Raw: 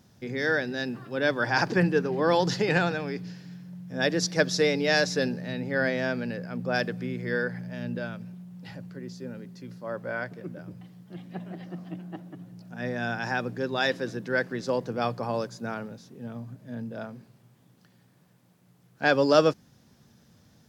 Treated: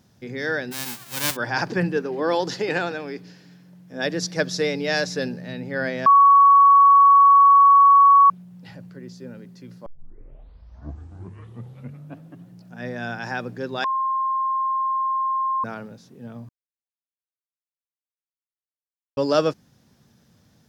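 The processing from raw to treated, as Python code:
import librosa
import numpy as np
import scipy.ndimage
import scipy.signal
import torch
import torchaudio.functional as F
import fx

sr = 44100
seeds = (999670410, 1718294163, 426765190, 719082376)

y = fx.envelope_flatten(x, sr, power=0.1, at=(0.71, 1.35), fade=0.02)
y = fx.low_shelf_res(y, sr, hz=220.0, db=-6.0, q=1.5, at=(1.97, 4.05))
y = fx.edit(y, sr, fx.bleep(start_s=6.06, length_s=2.24, hz=1120.0, db=-9.0),
    fx.tape_start(start_s=9.86, length_s=2.6),
    fx.bleep(start_s=13.84, length_s=1.8, hz=1060.0, db=-20.0),
    fx.silence(start_s=16.49, length_s=2.68), tone=tone)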